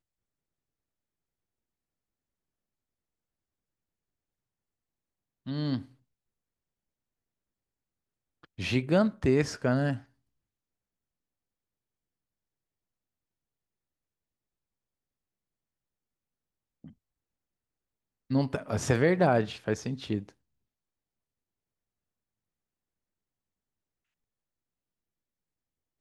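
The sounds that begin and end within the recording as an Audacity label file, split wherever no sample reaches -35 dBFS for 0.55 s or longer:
5.480000	5.820000	sound
8.590000	9.970000	sound
18.310000	20.290000	sound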